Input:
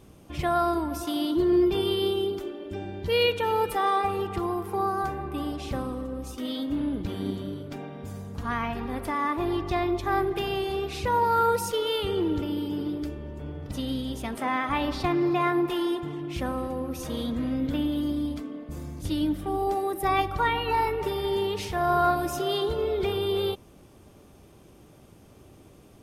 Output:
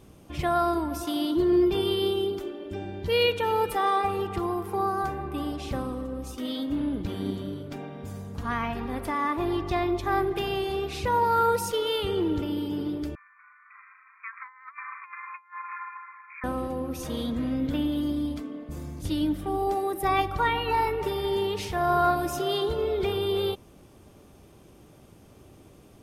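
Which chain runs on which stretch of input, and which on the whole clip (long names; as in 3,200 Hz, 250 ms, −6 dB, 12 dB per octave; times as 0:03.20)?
0:13.15–0:16.44: linear-phase brick-wall band-pass 1,000–2,500 Hz + compressor whose output falls as the input rises −38 dBFS, ratio −0.5 + amplitude modulation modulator 190 Hz, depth 20%
whole clip: no processing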